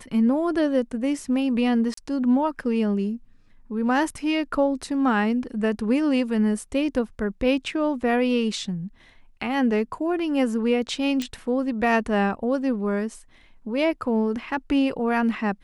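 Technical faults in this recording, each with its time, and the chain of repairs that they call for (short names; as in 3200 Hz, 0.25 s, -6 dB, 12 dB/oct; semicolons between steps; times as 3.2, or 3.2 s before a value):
1.94–1.97 gap 34 ms
11.22 pop -16 dBFS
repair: de-click; interpolate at 1.94, 34 ms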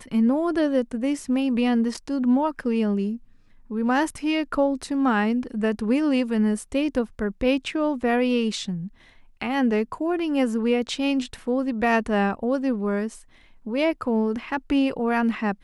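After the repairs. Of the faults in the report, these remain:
11.22 pop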